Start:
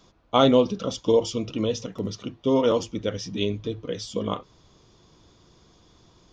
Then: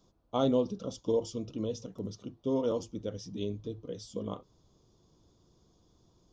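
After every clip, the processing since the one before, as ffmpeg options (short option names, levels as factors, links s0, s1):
-af "equalizer=f=2100:w=0.82:g=-13.5,volume=0.398"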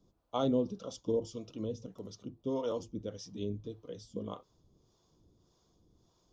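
-filter_complex "[0:a]acrossover=split=500[s0][s1];[s0]aeval=exprs='val(0)*(1-0.7/2+0.7/2*cos(2*PI*1.7*n/s))':c=same[s2];[s1]aeval=exprs='val(0)*(1-0.7/2-0.7/2*cos(2*PI*1.7*n/s))':c=same[s3];[s2][s3]amix=inputs=2:normalize=0"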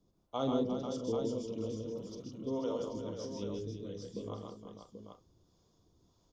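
-af "aecho=1:1:45|131|158|352|490|785:0.316|0.531|0.531|0.355|0.376|0.422,volume=0.668"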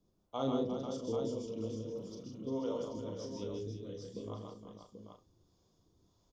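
-filter_complex "[0:a]asplit=2[s0][s1];[s1]adelay=37,volume=0.422[s2];[s0][s2]amix=inputs=2:normalize=0,volume=0.75"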